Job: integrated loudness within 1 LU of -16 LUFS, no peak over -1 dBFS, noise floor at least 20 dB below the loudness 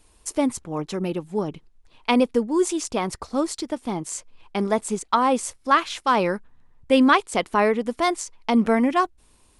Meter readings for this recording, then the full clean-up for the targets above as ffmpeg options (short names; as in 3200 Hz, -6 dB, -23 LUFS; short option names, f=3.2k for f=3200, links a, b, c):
loudness -23.0 LUFS; peak -5.5 dBFS; loudness target -16.0 LUFS
-> -af "volume=7dB,alimiter=limit=-1dB:level=0:latency=1"